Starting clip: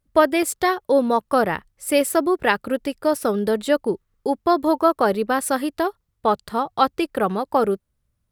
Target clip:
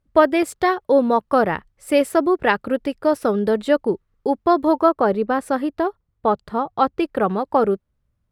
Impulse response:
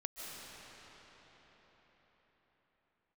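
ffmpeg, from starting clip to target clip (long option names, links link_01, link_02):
-af "asetnsamples=nb_out_samples=441:pad=0,asendcmd='4.89 lowpass f 1200;7 lowpass f 2100',lowpass=frequency=2500:poles=1,volume=2dB"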